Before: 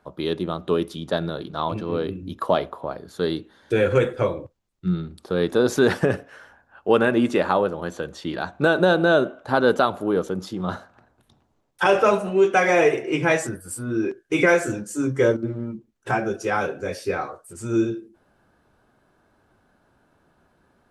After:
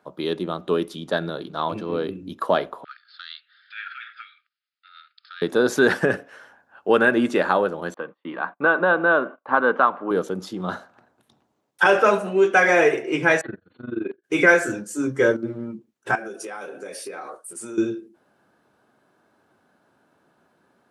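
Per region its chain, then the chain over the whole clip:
2.84–5.42 s: compression 10:1, threshold -21 dBFS + brick-wall FIR band-pass 1.2–5.2 kHz + loudspeaker Doppler distortion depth 0.12 ms
7.94–10.11 s: cabinet simulation 250–2500 Hz, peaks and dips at 380 Hz -7 dB, 640 Hz -4 dB, 1.1 kHz +9 dB, 1.5 kHz -3 dB + gate -46 dBFS, range -29 dB
13.41–14.24 s: gate -34 dBFS, range -9 dB + AM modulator 23 Hz, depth 80% + brick-wall FIR low-pass 4.4 kHz
16.15–17.78 s: high-pass 240 Hz + peaking EQ 9.5 kHz +13 dB 0.32 oct + compression 16:1, threshold -30 dBFS
whole clip: high-pass 170 Hz 12 dB/octave; dynamic bell 1.6 kHz, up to +7 dB, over -39 dBFS, Q 3.5

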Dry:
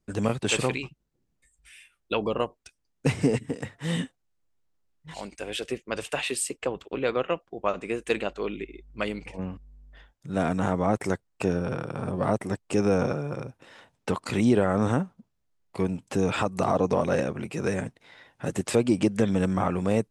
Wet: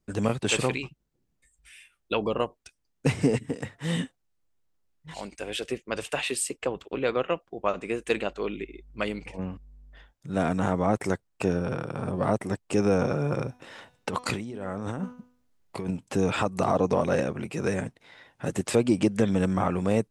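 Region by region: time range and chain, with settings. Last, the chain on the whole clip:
13.12–15.91 s: de-hum 247.6 Hz, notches 28 + compressor with a negative ratio -31 dBFS
whole clip: none

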